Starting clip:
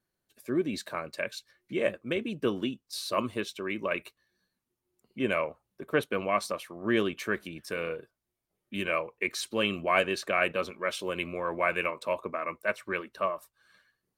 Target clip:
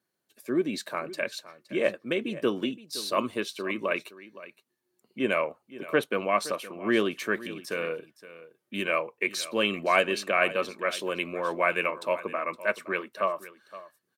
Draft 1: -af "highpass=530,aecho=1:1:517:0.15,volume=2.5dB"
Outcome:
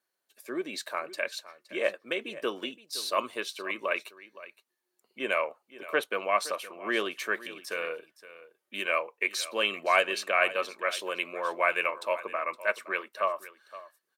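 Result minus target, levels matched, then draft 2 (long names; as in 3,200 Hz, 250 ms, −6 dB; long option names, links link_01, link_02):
250 Hz band −8.0 dB
-af "highpass=180,aecho=1:1:517:0.15,volume=2.5dB"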